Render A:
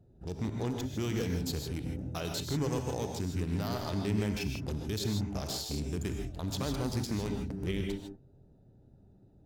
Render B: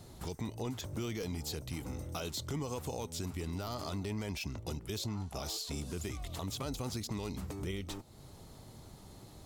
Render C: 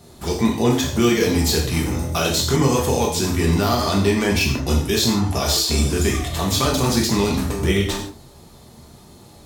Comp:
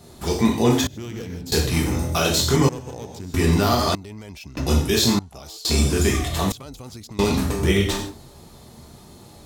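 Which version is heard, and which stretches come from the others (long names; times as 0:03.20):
C
0:00.87–0:01.52: punch in from A
0:02.69–0:03.34: punch in from A
0:03.95–0:04.57: punch in from B
0:05.19–0:05.65: punch in from B
0:06.52–0:07.19: punch in from B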